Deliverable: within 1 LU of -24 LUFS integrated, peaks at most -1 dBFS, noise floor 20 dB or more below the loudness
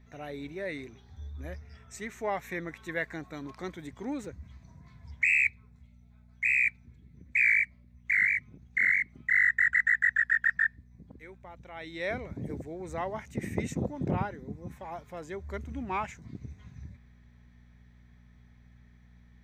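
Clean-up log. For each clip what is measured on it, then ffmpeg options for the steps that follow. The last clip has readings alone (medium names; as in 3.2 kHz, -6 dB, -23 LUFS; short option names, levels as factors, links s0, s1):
hum 60 Hz; highest harmonic 240 Hz; hum level -54 dBFS; loudness -28.5 LUFS; peak level -16.5 dBFS; loudness target -24.0 LUFS
-> -af "bandreject=f=60:t=h:w=4,bandreject=f=120:t=h:w=4,bandreject=f=180:t=h:w=4,bandreject=f=240:t=h:w=4"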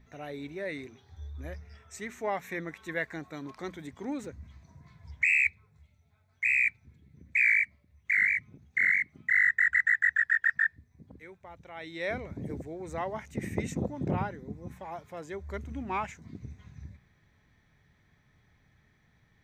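hum not found; loudness -28.0 LUFS; peak level -16.5 dBFS; loudness target -24.0 LUFS
-> -af "volume=1.58"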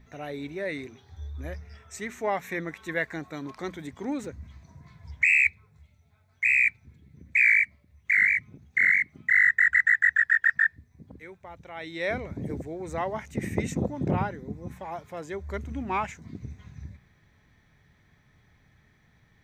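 loudness -24.0 LUFS; peak level -12.5 dBFS; noise floor -63 dBFS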